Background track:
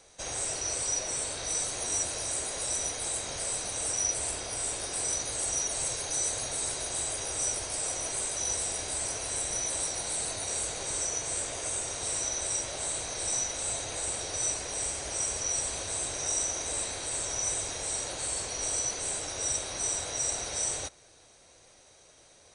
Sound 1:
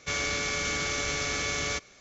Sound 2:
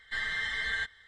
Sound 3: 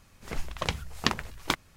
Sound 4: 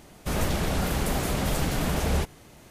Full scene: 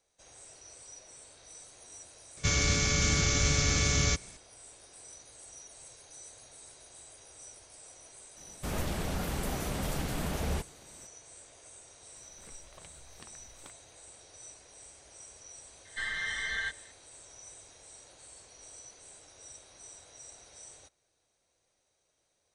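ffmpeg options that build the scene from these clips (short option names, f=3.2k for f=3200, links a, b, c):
-filter_complex "[0:a]volume=-19.5dB[a];[1:a]bass=f=250:g=15,treble=f=4k:g=8[b];[3:a]acompressor=threshold=-48dB:ratio=2.5:attack=2.1:release=124:knee=1:detection=rms[c];[b]atrim=end=2,asetpts=PTS-STARTPTS,volume=-2.5dB,afade=t=in:d=0.004:c=hsin,afade=t=out:st=1.996:d=0.004:c=hsin,adelay=2370[d];[4:a]atrim=end=2.7,asetpts=PTS-STARTPTS,volume=-7.5dB,afade=t=in:d=0.004:c=hsin,afade=t=out:st=2.696:d=0.004:c=hsin,adelay=8370[e];[c]atrim=end=1.76,asetpts=PTS-STARTPTS,volume=-7dB,afade=t=in:d=0.004:c=hsin,afade=t=out:st=1.756:d=0.004:c=hsin,adelay=12160[f];[2:a]atrim=end=1.07,asetpts=PTS-STARTPTS,volume=-2dB,afade=t=in:d=0.004:c=hsin,afade=t=out:st=1.066:d=0.004:c=hsin,adelay=15850[g];[a][d][e][f][g]amix=inputs=5:normalize=0"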